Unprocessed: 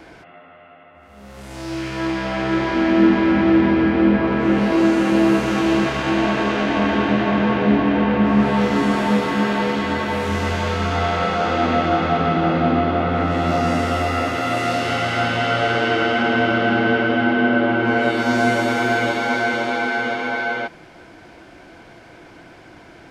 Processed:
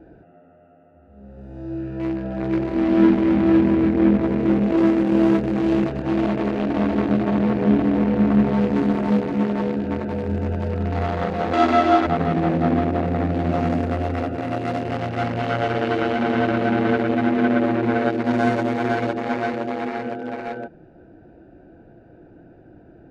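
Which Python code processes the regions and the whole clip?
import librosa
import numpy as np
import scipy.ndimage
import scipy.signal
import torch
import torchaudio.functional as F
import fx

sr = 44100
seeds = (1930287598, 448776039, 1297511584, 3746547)

y = fx.chain(x, sr, fx.highpass(hz=210.0, slope=6),
    fx.high_shelf(hz=6600.0, db=12.0),
    fx.comb(ms=3.0, depth=0.95), at=(11.53, 12.07))
y = fx.wiener(y, sr, points=41)
y = fx.high_shelf(y, sr, hz=4400.0, db=-8.5)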